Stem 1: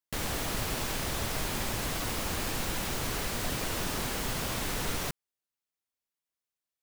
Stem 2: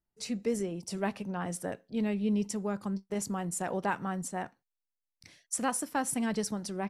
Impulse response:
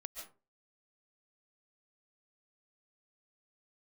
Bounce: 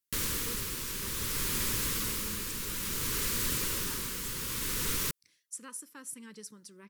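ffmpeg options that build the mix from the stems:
-filter_complex "[0:a]tremolo=f=0.59:d=0.5,volume=0.841[s0];[1:a]highpass=f=240:p=1,volume=0.188[s1];[s0][s1]amix=inputs=2:normalize=0,asuperstop=centerf=710:order=4:qfactor=1.5,aemphasis=mode=production:type=cd"

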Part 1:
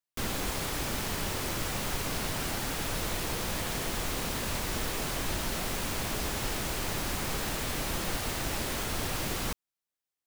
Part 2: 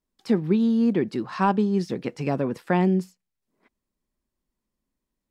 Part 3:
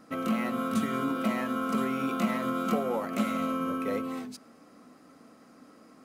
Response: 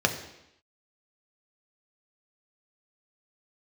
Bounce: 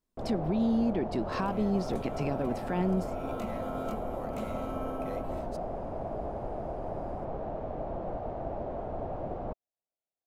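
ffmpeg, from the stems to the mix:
-filter_complex "[0:a]lowpass=f=670:t=q:w=4.1,volume=0.596[s0];[1:a]alimiter=limit=0.0944:level=0:latency=1:release=215,volume=0.891,asplit=2[s1][s2];[2:a]alimiter=limit=0.1:level=0:latency=1:release=445,adelay=1200,volume=0.355[s3];[s2]apad=whole_len=319541[s4];[s3][s4]sidechaincompress=threshold=0.0224:ratio=8:attack=21:release=614[s5];[s0][s1][s5]amix=inputs=3:normalize=0,equalizer=f=1900:t=o:w=0.34:g=-2.5"

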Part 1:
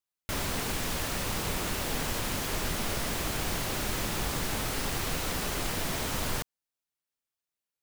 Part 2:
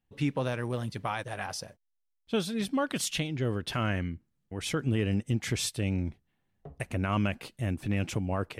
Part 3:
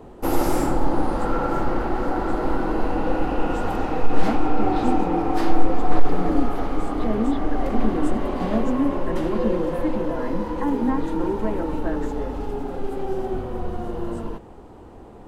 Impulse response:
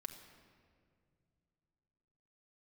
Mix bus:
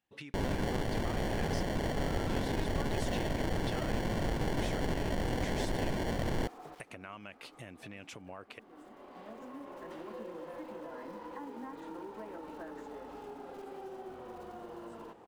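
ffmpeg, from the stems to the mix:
-filter_complex "[0:a]lowpass=f=11000:w=0.5412,lowpass=f=11000:w=1.3066,acrusher=samples=35:mix=1:aa=0.000001,adelay=50,volume=0.944[s0];[1:a]acompressor=threshold=0.0224:ratio=6,volume=1.33,asplit=2[s1][s2];[2:a]acrusher=bits=8:mode=log:mix=0:aa=0.000001,adelay=750,volume=0.531[s3];[s2]apad=whole_len=706491[s4];[s3][s4]sidechaincompress=threshold=0.00158:ratio=4:attack=9.1:release=979[s5];[s1][s5]amix=inputs=2:normalize=0,highpass=f=650:p=1,acompressor=threshold=0.00631:ratio=3,volume=1[s6];[s0][s6]amix=inputs=2:normalize=0,highshelf=f=7200:g=-9"

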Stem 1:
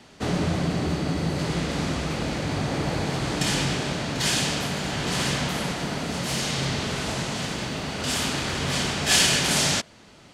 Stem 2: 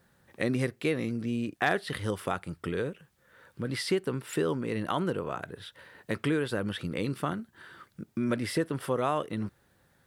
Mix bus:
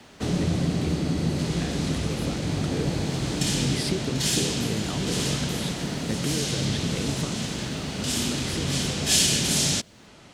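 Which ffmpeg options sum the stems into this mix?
-filter_complex "[0:a]bandreject=f=4600:w=27,volume=1.12[s0];[1:a]acompressor=threshold=0.0158:ratio=6,dynaudnorm=f=210:g=21:m=2.37,volume=1.33[s1];[s0][s1]amix=inputs=2:normalize=0,acrossover=split=460|3000[s2][s3][s4];[s3]acompressor=threshold=0.00708:ratio=2.5[s5];[s2][s5][s4]amix=inputs=3:normalize=0"

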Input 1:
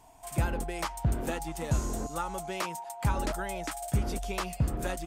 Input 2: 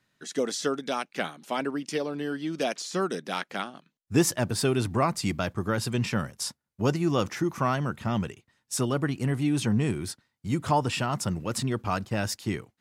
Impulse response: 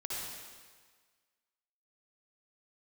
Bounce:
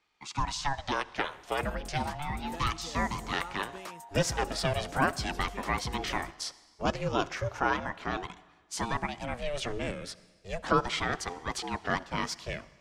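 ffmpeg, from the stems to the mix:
-filter_complex "[0:a]asoftclip=type=tanh:threshold=0.075,adelay=1250,volume=0.376[s0];[1:a]acrossover=split=350 6600:gain=0.2 1 0.141[s1][s2][s3];[s1][s2][s3]amix=inputs=3:normalize=0,aeval=exprs='val(0)*sin(2*PI*400*n/s+400*0.55/0.35*sin(2*PI*0.35*n/s))':c=same,volume=1.26,asplit=2[s4][s5];[s5]volume=0.106[s6];[2:a]atrim=start_sample=2205[s7];[s6][s7]afir=irnorm=-1:irlink=0[s8];[s0][s4][s8]amix=inputs=3:normalize=0"

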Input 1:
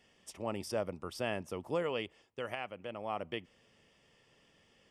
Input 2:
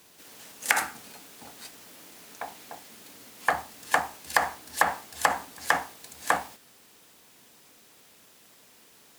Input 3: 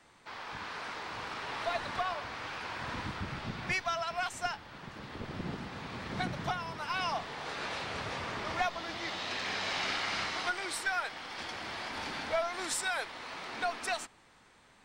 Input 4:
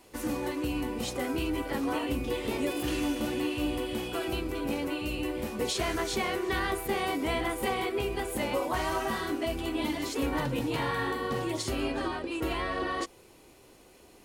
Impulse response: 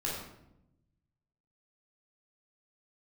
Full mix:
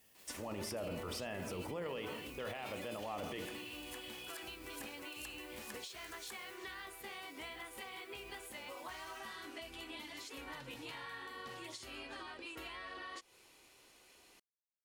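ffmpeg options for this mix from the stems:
-filter_complex "[0:a]agate=range=0.355:threshold=0.00112:ratio=16:detection=peak,volume=1.33,asplit=2[s0][s1];[s1]volume=0.2[s2];[1:a]aderivative,acompressor=threshold=0.00708:ratio=1.5,volume=0.211[s3];[3:a]tiltshelf=f=970:g=-9,acompressor=threshold=0.0158:ratio=10,highshelf=f=6400:g=-8.5,adelay=150,volume=0.422[s4];[4:a]atrim=start_sample=2205[s5];[s2][s5]afir=irnorm=-1:irlink=0[s6];[s0][s3][s4][s6]amix=inputs=4:normalize=0,alimiter=level_in=2.99:limit=0.0631:level=0:latency=1:release=13,volume=0.335"

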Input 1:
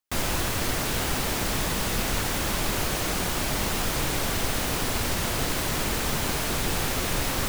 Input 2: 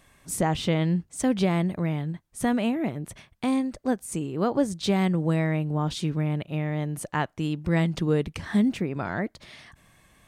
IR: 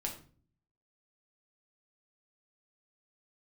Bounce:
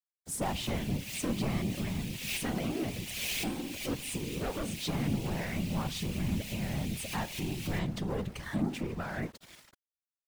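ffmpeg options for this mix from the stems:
-filter_complex "[0:a]highshelf=f=1800:t=q:w=3:g=11,adelay=300,volume=0.316[s0];[1:a]asoftclip=type=tanh:threshold=0.0562,volume=1,asplit=3[s1][s2][s3];[s2]volume=0.376[s4];[s3]apad=whole_len=343490[s5];[s0][s5]sidechaincompress=threshold=0.00708:ratio=8:attack=28:release=223[s6];[2:a]atrim=start_sample=2205[s7];[s4][s7]afir=irnorm=-1:irlink=0[s8];[s6][s1][s8]amix=inputs=3:normalize=0,adynamicequalizer=threshold=0.00891:dfrequency=290:dqfactor=1.9:tfrequency=290:tqfactor=1.9:attack=5:release=100:ratio=0.375:range=2.5:mode=cutabove:tftype=bell,aeval=exprs='val(0)*gte(abs(val(0)),0.01)':c=same,afftfilt=real='hypot(re,im)*cos(2*PI*random(0))':imag='hypot(re,im)*sin(2*PI*random(1))':win_size=512:overlap=0.75"

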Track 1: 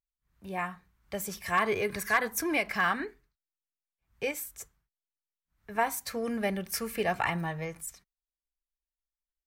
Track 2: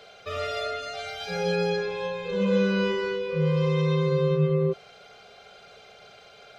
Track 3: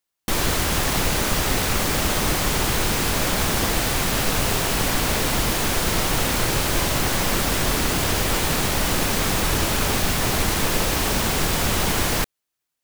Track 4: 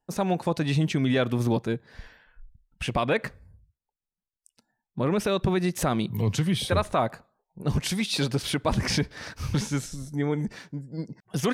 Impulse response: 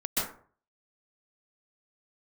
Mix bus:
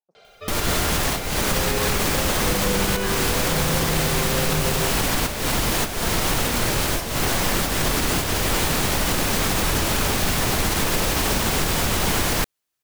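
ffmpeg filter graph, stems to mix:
-filter_complex "[0:a]acompressor=mode=upward:threshold=0.0631:ratio=2.5,adelay=250,volume=0.398[s0];[1:a]adelay=150,volume=0.794[s1];[2:a]adelay=200,volume=1.19[s2];[3:a]bandpass=f=630:t=q:w=1.7:csg=0,aeval=exprs='val(0)*pow(10,-32*(0.5-0.5*cos(2*PI*1.7*n/s))/20)':c=same,volume=0.2,asplit=2[s3][s4];[s4]apad=whole_len=575058[s5];[s2][s5]sidechaincompress=threshold=0.00282:ratio=4:attack=31:release=199[s6];[s0][s1][s6][s3]amix=inputs=4:normalize=0,alimiter=limit=0.282:level=0:latency=1:release=48"

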